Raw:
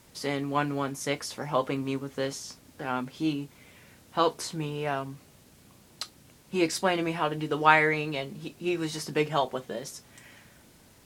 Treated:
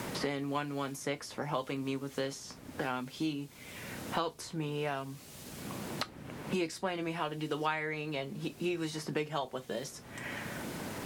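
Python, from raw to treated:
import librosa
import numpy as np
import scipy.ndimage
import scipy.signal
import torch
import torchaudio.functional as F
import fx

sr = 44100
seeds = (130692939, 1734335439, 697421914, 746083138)

y = fx.band_squash(x, sr, depth_pct=100)
y = F.gain(torch.from_numpy(y), -6.5).numpy()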